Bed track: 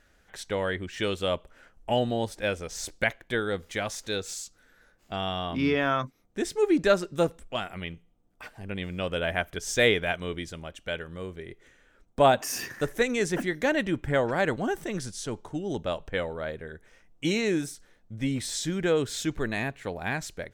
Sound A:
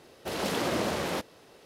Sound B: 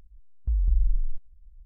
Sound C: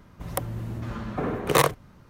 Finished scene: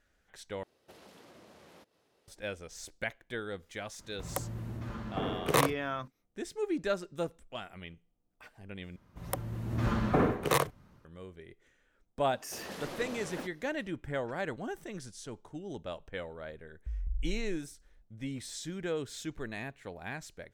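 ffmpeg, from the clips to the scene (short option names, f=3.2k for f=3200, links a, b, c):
-filter_complex "[1:a]asplit=2[a][b];[3:a]asplit=2[c][d];[0:a]volume=-10dB[e];[a]acompressor=threshold=-39dB:ratio=6:attack=53:release=351:knee=1:detection=peak[f];[d]dynaudnorm=f=180:g=3:m=17dB[g];[e]asplit=3[h][i][j];[h]atrim=end=0.634[k];[f]atrim=end=1.65,asetpts=PTS-STARTPTS,volume=-17dB[l];[i]atrim=start=2.276:end=8.964[m];[g]atrim=end=2.09,asetpts=PTS-STARTPTS,volume=-11.5dB[n];[j]atrim=start=11.046[o];[c]atrim=end=2.09,asetpts=PTS-STARTPTS,volume=-6.5dB,afade=t=in:d=0.004:c=hsin,afade=t=out:st=2.086:d=0.004:c=hsin,adelay=3990[p];[b]atrim=end=1.65,asetpts=PTS-STARTPTS,volume=-13dB,afade=t=in:d=0.004:c=hsin,afade=t=out:st=1.646:d=0.004:c=hsin,adelay=12260[q];[2:a]atrim=end=1.65,asetpts=PTS-STARTPTS,volume=-12.5dB,afade=t=in:d=0.004:c=hsin,afade=t=out:st=1.646:d=0.004:c=hsin,adelay=16390[r];[k][l]acrossfade=d=0.004:c1=hsin:c2=hsin[s];[s][m]acrossfade=d=0.004:c1=hsin:c2=hsin[t];[t][n]acrossfade=d=0.004:c1=hsin:c2=hsin[u];[u][o]acrossfade=d=0.004:c1=hsin:c2=hsin[v];[v][p][q][r]amix=inputs=4:normalize=0"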